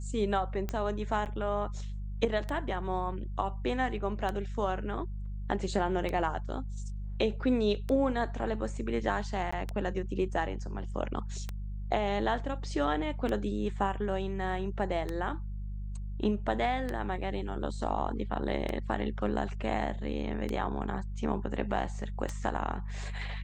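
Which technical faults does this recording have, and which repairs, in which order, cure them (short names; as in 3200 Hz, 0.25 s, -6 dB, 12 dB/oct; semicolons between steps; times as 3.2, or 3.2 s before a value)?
hum 50 Hz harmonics 4 -37 dBFS
tick 33 1/3 rpm -20 dBFS
1.25–1.26 gap 8.8 ms
9.51–9.53 gap 15 ms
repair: de-click; de-hum 50 Hz, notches 4; interpolate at 1.25, 8.8 ms; interpolate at 9.51, 15 ms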